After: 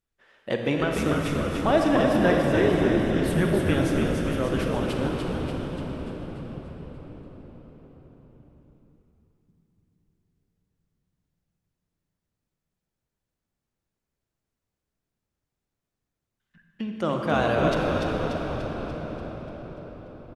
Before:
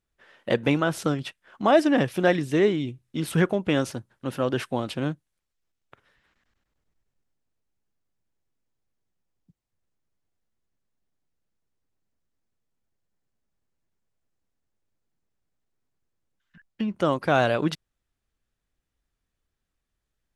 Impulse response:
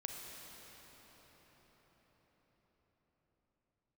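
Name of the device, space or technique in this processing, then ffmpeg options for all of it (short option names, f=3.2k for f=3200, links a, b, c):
cathedral: -filter_complex "[1:a]atrim=start_sample=2205[a];[0:a][a]afir=irnorm=-1:irlink=0,asplit=9[b][c][d][e][f][g][h][i][j];[c]adelay=292,afreqshift=-74,volume=-4.5dB[k];[d]adelay=584,afreqshift=-148,volume=-9.2dB[l];[e]adelay=876,afreqshift=-222,volume=-14dB[m];[f]adelay=1168,afreqshift=-296,volume=-18.7dB[n];[g]adelay=1460,afreqshift=-370,volume=-23.4dB[o];[h]adelay=1752,afreqshift=-444,volume=-28.2dB[p];[i]adelay=2044,afreqshift=-518,volume=-32.9dB[q];[j]adelay=2336,afreqshift=-592,volume=-37.6dB[r];[b][k][l][m][n][o][p][q][r]amix=inputs=9:normalize=0"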